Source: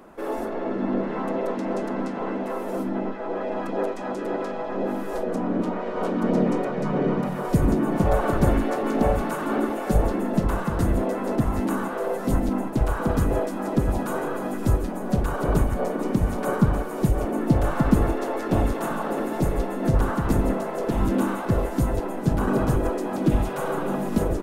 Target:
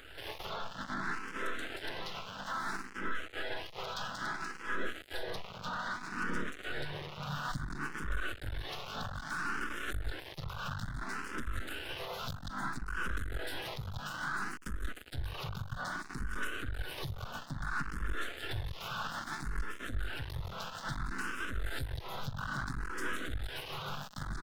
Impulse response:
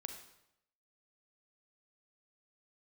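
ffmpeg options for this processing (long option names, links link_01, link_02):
-filter_complex "[0:a]firequalizer=gain_entry='entry(130,0);entry(200,-18);entry(410,-15);entry(590,-17);entry(1500,9);entry(2500,-6);entry(3600,12);entry(6700,-3)':delay=0.05:min_phase=1,acompressor=threshold=-29dB:ratio=6,alimiter=level_in=7dB:limit=-24dB:level=0:latency=1:release=327,volume=-7dB,aeval=exprs='max(val(0),0)':channel_layout=same,asplit=2[link_01][link_02];[link_02]afreqshift=0.6[link_03];[link_01][link_03]amix=inputs=2:normalize=1,volume=9dB"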